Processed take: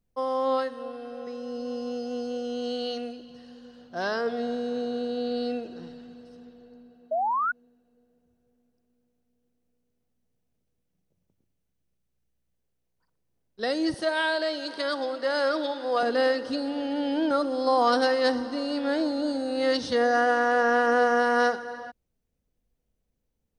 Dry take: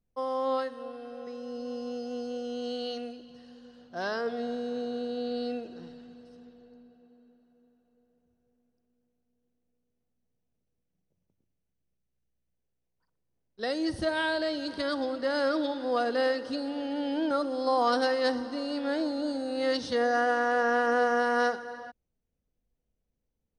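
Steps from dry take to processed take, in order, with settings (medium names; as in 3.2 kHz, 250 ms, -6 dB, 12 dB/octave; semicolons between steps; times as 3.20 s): 7.11–7.52 s: painted sound rise 610–1500 Hz -29 dBFS; 13.94–16.03 s: high-pass 400 Hz 12 dB/octave; trim +3.5 dB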